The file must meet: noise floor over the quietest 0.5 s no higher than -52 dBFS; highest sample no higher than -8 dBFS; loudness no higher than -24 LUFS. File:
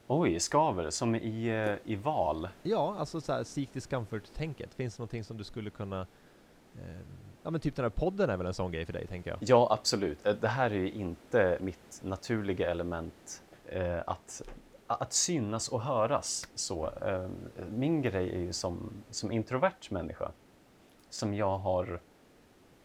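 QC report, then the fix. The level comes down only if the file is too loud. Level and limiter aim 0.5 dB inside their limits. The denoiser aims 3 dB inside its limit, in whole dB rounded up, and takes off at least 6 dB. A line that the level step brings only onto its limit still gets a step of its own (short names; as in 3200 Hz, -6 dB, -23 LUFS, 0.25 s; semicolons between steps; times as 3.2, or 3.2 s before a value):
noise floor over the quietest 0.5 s -61 dBFS: OK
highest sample -10.5 dBFS: OK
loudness -33.0 LUFS: OK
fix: none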